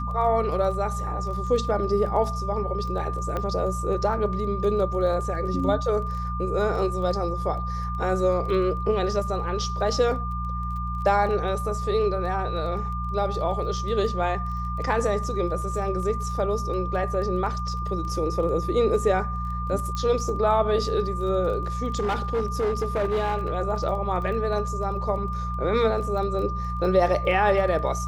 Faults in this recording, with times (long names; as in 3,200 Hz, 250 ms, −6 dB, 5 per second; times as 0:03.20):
surface crackle 15 per second −34 dBFS
mains hum 60 Hz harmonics 3 −30 dBFS
whistle 1,200 Hz −31 dBFS
0:03.37: click −16 dBFS
0:19.95: click −18 dBFS
0:21.99–0:23.52: clipping −20 dBFS